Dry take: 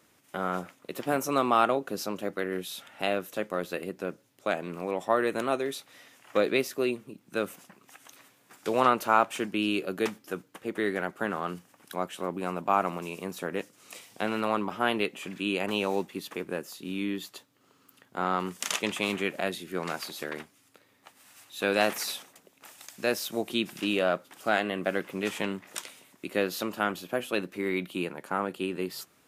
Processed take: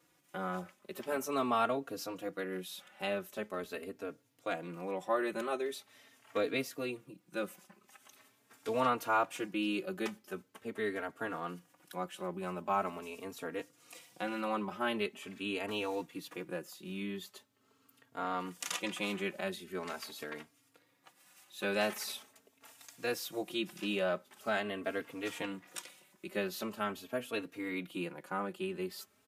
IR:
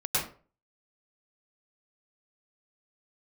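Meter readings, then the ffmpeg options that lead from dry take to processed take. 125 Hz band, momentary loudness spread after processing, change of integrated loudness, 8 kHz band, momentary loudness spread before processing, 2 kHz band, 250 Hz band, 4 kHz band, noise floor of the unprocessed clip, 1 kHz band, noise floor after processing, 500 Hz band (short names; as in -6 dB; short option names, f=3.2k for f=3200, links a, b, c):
-7.0 dB, 12 LU, -7.0 dB, -7.0 dB, 12 LU, -7.0 dB, -7.0 dB, -7.0 dB, -64 dBFS, -7.5 dB, -71 dBFS, -7.0 dB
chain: -filter_complex "[0:a]asplit=2[a][b];[b]adelay=3.7,afreqshift=0.43[c];[a][c]amix=inputs=2:normalize=1,volume=-4dB"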